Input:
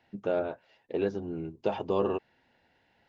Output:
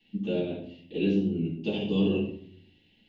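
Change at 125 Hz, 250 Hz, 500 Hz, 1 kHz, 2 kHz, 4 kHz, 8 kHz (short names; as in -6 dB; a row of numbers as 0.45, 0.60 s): +10.0 dB, +9.0 dB, -1.5 dB, -11.5 dB, +3.5 dB, +11.0 dB, n/a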